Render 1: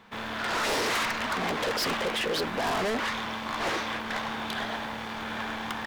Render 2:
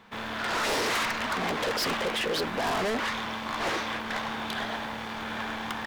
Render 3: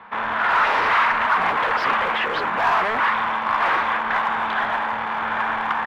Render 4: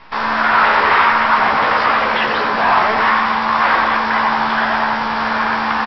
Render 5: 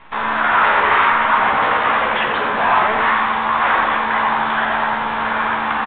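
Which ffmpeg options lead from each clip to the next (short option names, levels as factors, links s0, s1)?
-af anull
-filter_complex "[0:a]firequalizer=gain_entry='entry(300,0);entry(940,14);entry(4600,-10);entry(8100,-24)':delay=0.05:min_phase=1,acrossover=split=120|880|6100[s0][s1][s2][s3];[s0]tremolo=f=3.4:d=0.89[s4];[s1]asoftclip=type=hard:threshold=0.0299[s5];[s4][s5][s2][s3]amix=inputs=4:normalize=0,volume=1.26"
-filter_complex "[0:a]aresample=11025,acrusher=bits=6:dc=4:mix=0:aa=0.000001,aresample=44100,asplit=2[s0][s1];[s1]adelay=14,volume=0.531[s2];[s0][s2]amix=inputs=2:normalize=0,asplit=2[s3][s4];[s4]adelay=90,lowpass=f=2000:p=1,volume=0.668,asplit=2[s5][s6];[s6]adelay=90,lowpass=f=2000:p=1,volume=0.5,asplit=2[s7][s8];[s8]adelay=90,lowpass=f=2000:p=1,volume=0.5,asplit=2[s9][s10];[s10]adelay=90,lowpass=f=2000:p=1,volume=0.5,asplit=2[s11][s12];[s12]adelay=90,lowpass=f=2000:p=1,volume=0.5,asplit=2[s13][s14];[s14]adelay=90,lowpass=f=2000:p=1,volume=0.5,asplit=2[s15][s16];[s16]adelay=90,lowpass=f=2000:p=1,volume=0.5[s17];[s3][s5][s7][s9][s11][s13][s15][s17]amix=inputs=8:normalize=0,volume=1.5"
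-filter_complex "[0:a]asplit=2[s0][s1];[s1]adelay=47,volume=0.316[s2];[s0][s2]amix=inputs=2:normalize=0,aresample=8000,aresample=44100,volume=0.794"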